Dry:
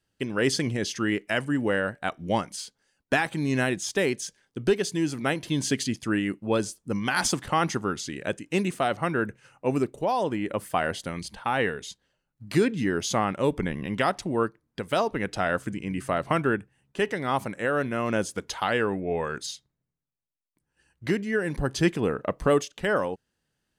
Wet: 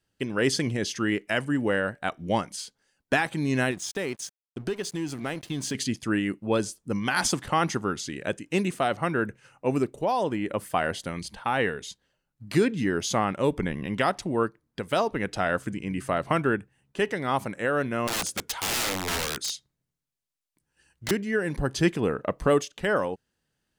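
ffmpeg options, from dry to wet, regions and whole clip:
-filter_complex "[0:a]asettb=1/sr,asplit=3[s0][s1][s2];[s0]atrim=end=3.714[s3];[s1]atrim=start=3.71:end=5.75,asetpts=PTS-STARTPTS,afade=t=in:d=0.004:c=qsin,afade=t=out:st=2.036:d=0.004:c=qsin,acompressor=threshold=0.0447:ratio=2.5:attack=3.2:release=140:knee=1:detection=peak,aeval=exprs='sgn(val(0))*max(abs(val(0))-0.00473,0)':c=same[s4];[s2]atrim=start=5.746[s5];[s3][s4]acrossfade=d=0.004:c1=hsin:c2=qsin[s6];[s6][s5]acrossfade=d=0.004:c1=qsin:c2=hsin,asettb=1/sr,asplit=3[s7][s8][s9];[s7]atrim=end=18.074[s10];[s8]atrim=start=18.07:end=21.11,asetpts=PTS-STARTPTS,afade=t=in:d=0.004:c=qsin,afade=t=out:st=3.036:d=0.004:c=qsin,aeval=exprs='(mod(17.8*val(0)+1,2)-1)/17.8':c=same,equalizer=f=7100:w=0.32:g=5[s11];[s9]atrim=start=21.106[s12];[s10][s11]acrossfade=d=0.004:c1=hsin:c2=qsin[s13];[s13][s12]acrossfade=d=0.004:c1=qsin:c2=hsin"

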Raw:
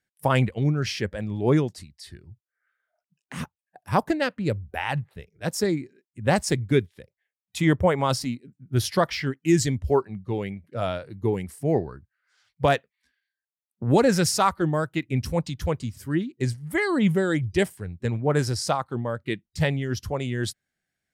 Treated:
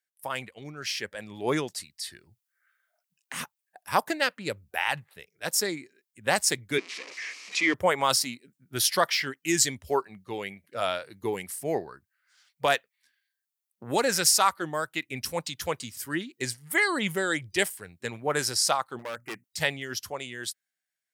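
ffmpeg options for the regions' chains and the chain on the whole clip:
-filter_complex "[0:a]asettb=1/sr,asplit=3[s0][s1][s2];[s0]atrim=end=6.784[s3];[s1]atrim=start=6.78:end=7.74,asetpts=PTS-STARTPTS,afade=t=in:d=0.004:c=qsin,afade=t=out:st=0.956:d=0.004:c=qsin,aeval=exprs='val(0)+0.5*0.0282*sgn(val(0))':c=same,highpass=f=260:w=0.5412,highpass=f=260:w=1.3066,equalizer=f=280:t=q:w=4:g=4,equalizer=f=580:t=q:w=4:g=-8,equalizer=f=830:t=q:w=4:g=-9,equalizer=f=1500:t=q:w=4:g=-8,equalizer=f=2300:t=q:w=4:g=7,equalizer=f=3500:t=q:w=4:g=-7,lowpass=f=5700:w=0.5412,lowpass=f=5700:w=1.3066[s4];[s2]atrim=start=7.736[s5];[s3][s4]acrossfade=d=0.004:c1=hsin:c2=qsin[s6];[s6][s5]acrossfade=d=0.004:c1=qsin:c2=hsin,asettb=1/sr,asplit=3[s7][s8][s9];[s7]atrim=end=18.994[s10];[s8]atrim=start=18.99:end=19.44,asetpts=PTS-STARTPTS,afade=t=in:d=0.004:c=qsin,afade=t=out:st=0.446:d=0.004:c=qsin,asuperstop=centerf=3700:order=4:qfactor=0.93,bandreject=f=60:t=h:w=6,bandreject=f=120:t=h:w=6,bandreject=f=180:t=h:w=6,bandreject=f=240:t=h:w=6,asoftclip=type=hard:threshold=0.0376[s11];[s9]atrim=start=19.436[s12];[s10][s11]acrossfade=d=0.004:c1=hsin:c2=qsin[s13];[s13][s12]acrossfade=d=0.004:c1=qsin:c2=hsin,highpass=f=1300:p=1,highshelf=f=9500:g=8.5,dynaudnorm=f=100:g=21:m=3.98,volume=0.531"

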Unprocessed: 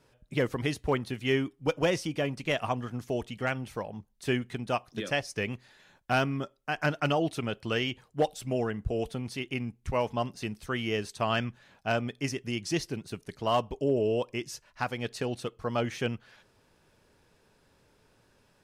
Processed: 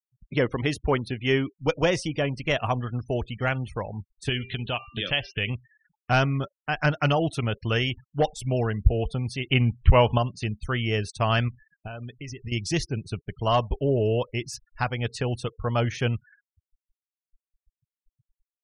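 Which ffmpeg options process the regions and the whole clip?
-filter_complex "[0:a]asettb=1/sr,asplit=3[s0][s1][s2];[s0]atrim=end=4.294[s3];[s1]atrim=start=4.29:end=5.5,asetpts=PTS-STARTPTS,afade=t=in:d=0.004:c=qsin,afade=t=out:st=1.206:d=0.004:c=qsin,bandreject=f=395.5:t=h:w=4,bandreject=f=791:t=h:w=4,bandreject=f=1186.5:t=h:w=4,bandreject=f=1582:t=h:w=4,bandreject=f=1977.5:t=h:w=4,bandreject=f=2373:t=h:w=4,bandreject=f=2768.5:t=h:w=4,acompressor=threshold=0.0224:ratio=2.5:attack=3.2:release=140:knee=1:detection=peak,lowpass=f=3100:t=q:w=4.6[s4];[s2]atrim=start=5.496[s5];[s3][s4]acrossfade=d=0.004:c1=hsin:c2=qsin[s6];[s6][s5]acrossfade=d=0.004:c1=qsin:c2=hsin,asettb=1/sr,asplit=3[s7][s8][s9];[s7]atrim=end=9.504[s10];[s8]atrim=start=9.5:end=10.18,asetpts=PTS-STARTPTS,afade=t=in:d=0.004:c=qsin,afade=t=out:st=0.676:d=0.004:c=qsin,lowpass=f=4400:w=0.5412,lowpass=f=4400:w=1.3066,equalizer=f=3000:w=7.6:g=7,acontrast=51[s11];[s9]atrim=start=10.176[s12];[s10][s11]acrossfade=d=0.004:c1=hsin:c2=qsin[s13];[s13][s12]acrossfade=d=0.004:c1=qsin:c2=hsin,asettb=1/sr,asplit=3[s14][s15][s16];[s14]atrim=end=11.484[s17];[s15]atrim=start=11.48:end=12.52,asetpts=PTS-STARTPTS,afade=t=in:d=0.004:c=qsin,afade=t=out:st=1.036:d=0.004:c=qsin,asubboost=boost=6.5:cutoff=66,acompressor=threshold=0.0126:ratio=10:attack=3.2:release=140:knee=1:detection=peak,asoftclip=type=hard:threshold=0.0224[s18];[s16]atrim=start=12.516[s19];[s17][s18]acrossfade=d=0.004:c1=hsin:c2=qsin[s20];[s20][s19]acrossfade=d=0.004:c1=qsin:c2=hsin,afftfilt=real='re*gte(hypot(re,im),0.00562)':imag='im*gte(hypot(re,im),0.00562)':win_size=1024:overlap=0.75,asubboost=boost=4.5:cutoff=110,volume=1.68"

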